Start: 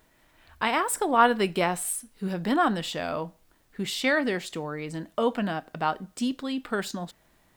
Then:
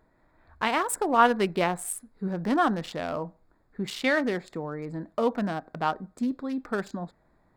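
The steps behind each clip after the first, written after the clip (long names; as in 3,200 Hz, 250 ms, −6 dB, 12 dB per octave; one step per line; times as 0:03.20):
adaptive Wiener filter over 15 samples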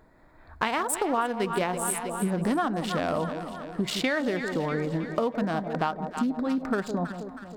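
delay that swaps between a low-pass and a high-pass 160 ms, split 830 Hz, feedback 72%, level −10.5 dB
downward compressor 10 to 1, threshold −30 dBFS, peak gain reduction 17 dB
level +7 dB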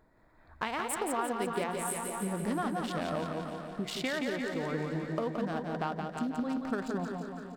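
repeating echo 173 ms, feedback 55%, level −5 dB
level −7.5 dB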